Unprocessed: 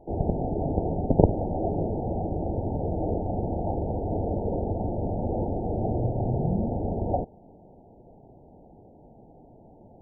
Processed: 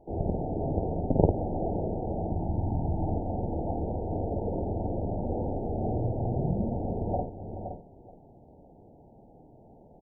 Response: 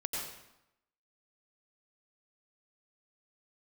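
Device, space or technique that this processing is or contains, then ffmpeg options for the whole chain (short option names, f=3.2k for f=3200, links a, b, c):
ducked delay: -filter_complex "[0:a]asettb=1/sr,asplit=3[a][b][c];[a]atrim=end=2.304[d];[b]atrim=start=2.3:end=3.16,asetpts=PTS-STARTPTS,afade=t=in:d=0.004:c=qsin,afade=t=out:st=0.856:d=0.004:c=qsin,aecho=1:1:1:0.63,atrim=end_sample=37926[e];[c]atrim=start=3.156[f];[d][e]acrossfade=d=0.004:c1=hsin:c2=qsin[g];[g][f]acrossfade=d=0.004:c1=qsin:c2=hsin,asplit=3[h][i][j];[i]adelay=518,volume=-8.5dB[k];[j]apad=whole_len=464391[l];[k][l]sidechaincompress=threshold=-33dB:ratio=8:attack=25:release=292[m];[h][m]amix=inputs=2:normalize=0,aecho=1:1:52|427:0.596|0.188,volume=-4.5dB"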